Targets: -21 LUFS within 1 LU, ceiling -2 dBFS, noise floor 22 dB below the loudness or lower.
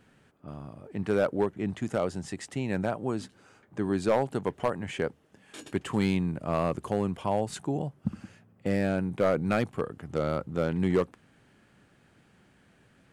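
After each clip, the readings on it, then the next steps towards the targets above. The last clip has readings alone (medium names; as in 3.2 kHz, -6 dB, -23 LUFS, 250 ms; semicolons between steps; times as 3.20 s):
clipped samples 0.4%; clipping level -17.0 dBFS; loudness -30.0 LUFS; peak level -17.0 dBFS; loudness target -21.0 LUFS
-> clip repair -17 dBFS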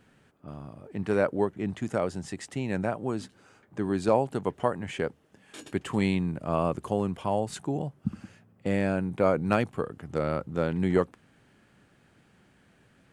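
clipped samples 0.0%; loudness -29.5 LUFS; peak level -8.0 dBFS; loudness target -21.0 LUFS
-> trim +8.5 dB; peak limiter -2 dBFS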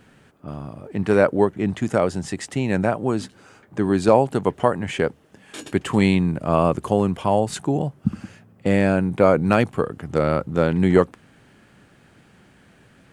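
loudness -21.0 LUFS; peak level -2.0 dBFS; noise floor -54 dBFS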